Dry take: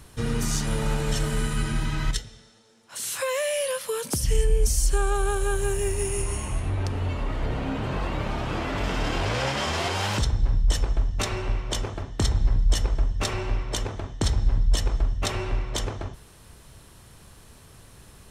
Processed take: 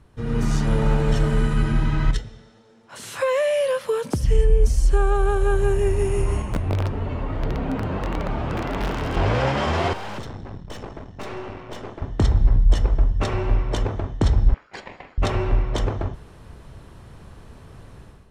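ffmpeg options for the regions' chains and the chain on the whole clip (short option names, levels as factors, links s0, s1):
-filter_complex "[0:a]asettb=1/sr,asplit=3[s0][s1][s2];[s0]atrim=end=6.424[s3];[s1]atrim=start=6.42:end=9.17,asetpts=PTS-STARTPTS,afade=t=in:d=0.004:c=qsin,afade=t=out:st=2.746:d=0.004:c=qsin,flanger=delay=4.3:depth=7.5:regen=-31:speed=1.7:shape=sinusoidal,aeval=exprs='(mod(13.3*val(0)+1,2)-1)/13.3':c=same[s4];[s2]atrim=start=9.166[s5];[s3][s4]acrossfade=d=0.004:c1=hsin:c2=qsin[s6];[s6][s5]acrossfade=d=0.004:c1=qsin:c2=hsin,asettb=1/sr,asplit=3[s7][s8][s9];[s7]atrim=end=9.934[s10];[s8]atrim=start=9.93:end=12.02,asetpts=PTS-STARTPTS,afade=t=in:d=0.004:c=qsin,afade=t=out:st=2.086:d=0.004:c=qsin,highpass=180,aeval=exprs='(tanh(56.2*val(0)+0.75)-tanh(0.75))/56.2':c=same[s11];[s9]atrim=start=12.016[s12];[s10][s11]acrossfade=d=0.004:c1=hsin:c2=qsin[s13];[s13][s12]acrossfade=d=0.004:c1=qsin:c2=hsin,asettb=1/sr,asplit=3[s14][s15][s16];[s14]atrim=end=14.544[s17];[s15]atrim=start=14.54:end=15.18,asetpts=PTS-STARTPTS,afade=t=in:d=0.004:c=qsin,afade=t=out:st=0.636:d=0.004:c=qsin,highpass=490,lowpass=4100,aeval=exprs='val(0)*sin(2*PI*1400*n/s)':c=same[s18];[s16]atrim=start=15.176[s19];[s17][s18]acrossfade=d=0.004:c1=hsin:c2=qsin[s20];[s20][s19]acrossfade=d=0.004:c1=qsin:c2=hsin,lowpass=f=1200:p=1,dynaudnorm=f=130:g=5:m=3.76,volume=0.631"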